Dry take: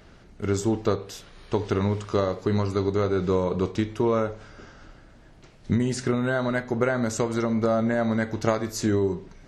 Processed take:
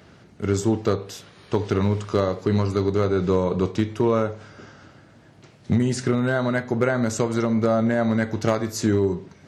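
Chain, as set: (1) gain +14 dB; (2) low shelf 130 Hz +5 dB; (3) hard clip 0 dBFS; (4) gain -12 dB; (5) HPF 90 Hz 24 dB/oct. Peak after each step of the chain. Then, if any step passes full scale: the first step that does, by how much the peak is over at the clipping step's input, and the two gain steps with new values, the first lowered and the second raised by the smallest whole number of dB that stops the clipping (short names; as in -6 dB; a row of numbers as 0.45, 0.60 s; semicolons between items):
+5.0, +6.5, 0.0, -12.0, -5.5 dBFS; step 1, 6.5 dB; step 1 +7 dB, step 4 -5 dB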